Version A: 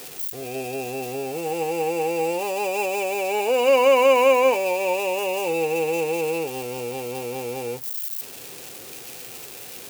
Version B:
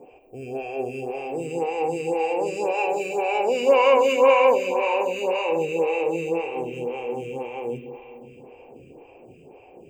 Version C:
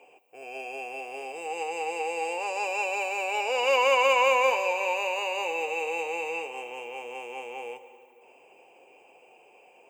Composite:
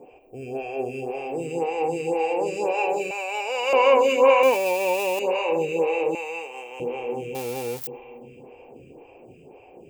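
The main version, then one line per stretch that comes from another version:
B
0:03.11–0:03.73: punch in from C
0:04.43–0:05.19: punch in from A
0:06.15–0:06.80: punch in from C
0:07.35–0:07.87: punch in from A

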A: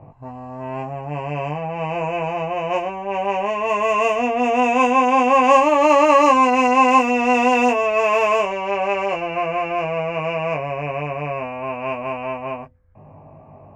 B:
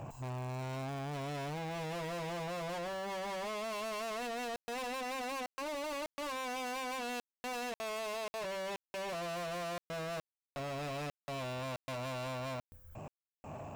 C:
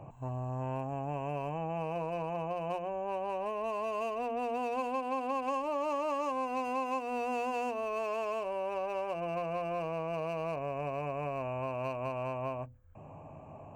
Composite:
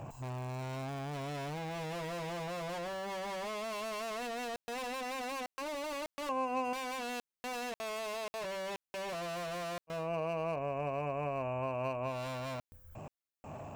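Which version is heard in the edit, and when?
B
0:06.29–0:06.73: punch in from C
0:09.99–0:12.14: punch in from C, crossfade 0.24 s
not used: A

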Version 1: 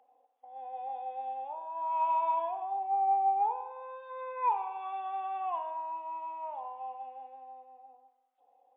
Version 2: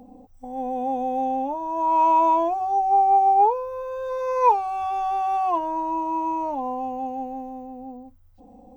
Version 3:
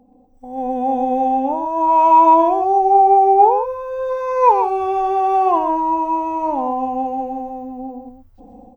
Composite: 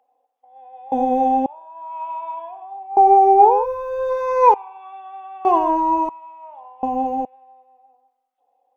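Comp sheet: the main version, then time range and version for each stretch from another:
1
0:00.92–0:01.46: punch in from 3
0:02.97–0:04.54: punch in from 3
0:05.45–0:06.09: punch in from 3
0:06.83–0:07.25: punch in from 3
not used: 2

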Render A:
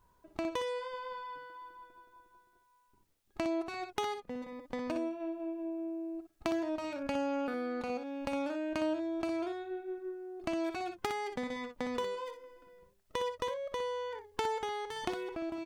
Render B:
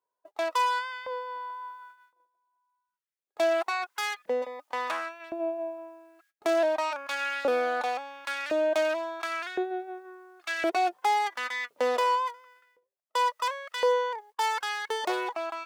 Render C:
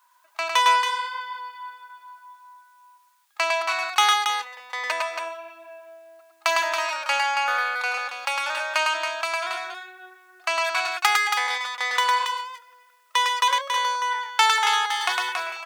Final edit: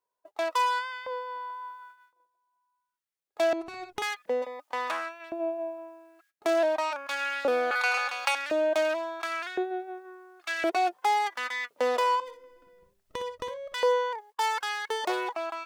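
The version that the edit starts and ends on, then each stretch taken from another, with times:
B
0:03.53–0:04.02: punch in from A
0:07.71–0:08.35: punch in from C
0:12.20–0:13.74: punch in from A

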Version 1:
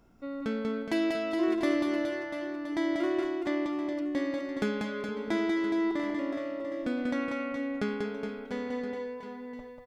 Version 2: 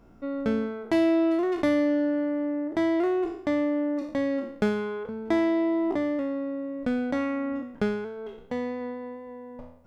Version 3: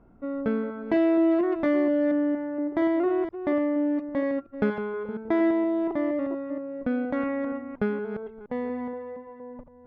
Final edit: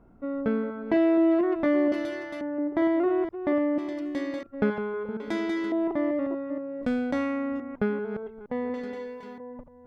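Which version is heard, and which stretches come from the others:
3
0:01.92–0:02.41: punch in from 1
0:03.78–0:04.43: punch in from 1
0:05.20–0:05.72: punch in from 1
0:06.83–0:07.60: punch in from 2
0:08.74–0:09.38: punch in from 1

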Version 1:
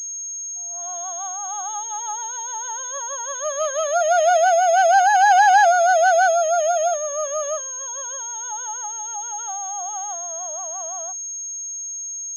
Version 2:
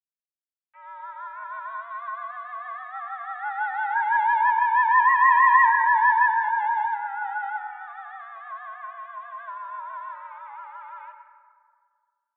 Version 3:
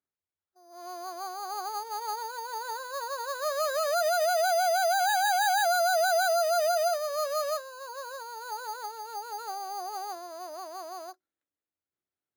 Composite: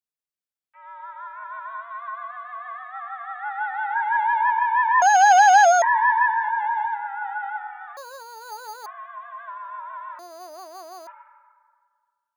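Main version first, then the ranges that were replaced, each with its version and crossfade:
2
0:05.02–0:05.82: punch in from 1
0:07.97–0:08.86: punch in from 3
0:10.19–0:11.07: punch in from 3

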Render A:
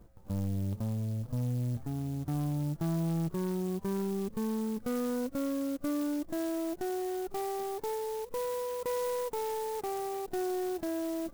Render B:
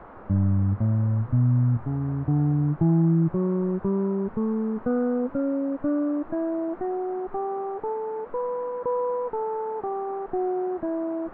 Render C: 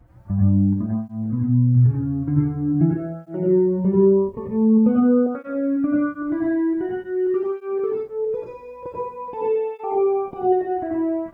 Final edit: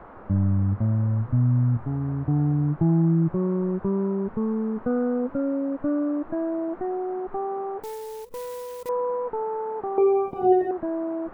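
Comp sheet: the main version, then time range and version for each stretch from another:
B
0:07.83–0:08.89: punch in from A
0:09.98–0:10.71: punch in from C

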